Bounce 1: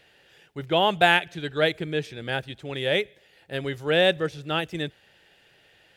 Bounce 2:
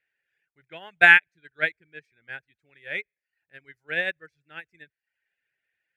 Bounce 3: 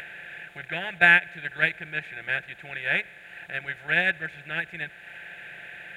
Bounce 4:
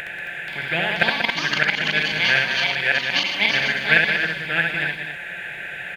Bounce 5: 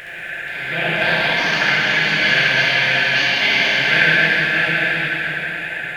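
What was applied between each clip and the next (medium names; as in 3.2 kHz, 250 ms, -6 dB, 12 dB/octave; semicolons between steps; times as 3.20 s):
reverb removal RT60 0.61 s; high-order bell 1.9 kHz +14.5 dB 1 oct; upward expansion 2.5:1, over -25 dBFS; trim -3.5 dB
spectral levelling over time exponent 0.4; tone controls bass +10 dB, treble 0 dB; upward compressor, threshold -33 dBFS; trim -4.5 dB
inverted gate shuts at -11 dBFS, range -26 dB; loudspeakers at several distances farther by 23 m -3 dB, 64 m -7 dB, 93 m -8 dB; ever faster or slower copies 481 ms, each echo +5 st, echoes 2; trim +7.5 dB
plate-style reverb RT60 4 s, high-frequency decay 0.85×, DRR -9 dB; trim -5 dB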